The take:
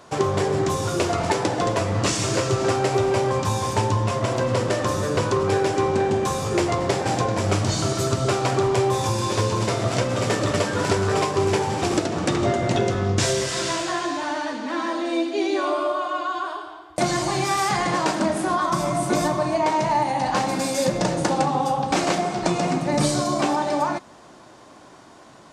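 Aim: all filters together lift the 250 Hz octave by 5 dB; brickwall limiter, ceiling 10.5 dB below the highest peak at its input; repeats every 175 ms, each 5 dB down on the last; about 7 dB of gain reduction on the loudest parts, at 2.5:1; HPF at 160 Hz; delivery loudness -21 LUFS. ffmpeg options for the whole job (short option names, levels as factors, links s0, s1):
-af "highpass=160,equalizer=f=250:t=o:g=8,acompressor=threshold=0.0562:ratio=2.5,alimiter=limit=0.106:level=0:latency=1,aecho=1:1:175|350|525|700|875|1050|1225:0.562|0.315|0.176|0.0988|0.0553|0.031|0.0173,volume=1.88"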